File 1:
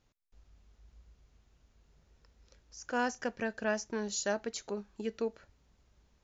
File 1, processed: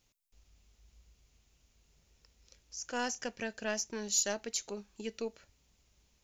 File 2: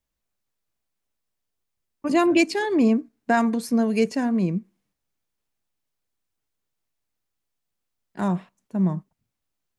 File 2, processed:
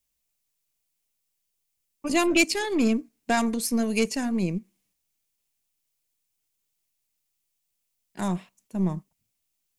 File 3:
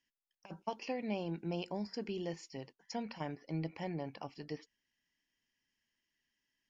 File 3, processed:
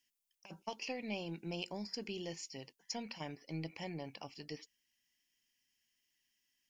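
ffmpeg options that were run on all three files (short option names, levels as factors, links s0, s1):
-af "aeval=exprs='0.422*(cos(1*acos(clip(val(0)/0.422,-1,1)))-cos(1*PI/2))+0.0237*(cos(6*acos(clip(val(0)/0.422,-1,1)))-cos(6*PI/2))':c=same,aexciter=amount=2.3:drive=6.4:freq=2200,volume=0.631"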